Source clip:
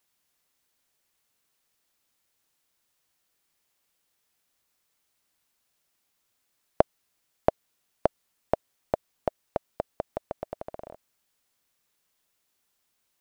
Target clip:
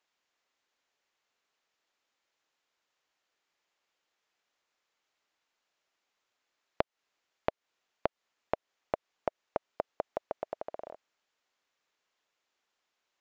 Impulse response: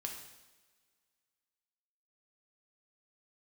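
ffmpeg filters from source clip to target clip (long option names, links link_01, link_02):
-af "bass=frequency=250:gain=-14,treble=frequency=4000:gain=-8,acompressor=threshold=-26dB:ratio=12,aresample=16000,aresample=44100"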